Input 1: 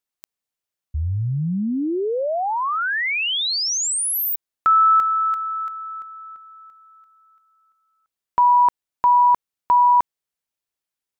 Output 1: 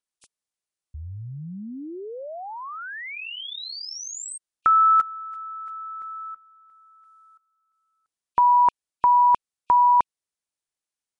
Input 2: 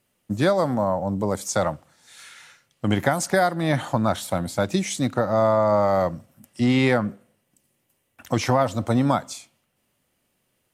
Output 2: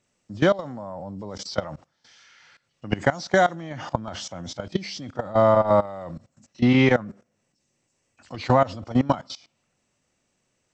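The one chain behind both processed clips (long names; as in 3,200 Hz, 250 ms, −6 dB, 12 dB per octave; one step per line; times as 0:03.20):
hearing-aid frequency compression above 2,400 Hz 1.5 to 1
output level in coarse steps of 19 dB
level +3 dB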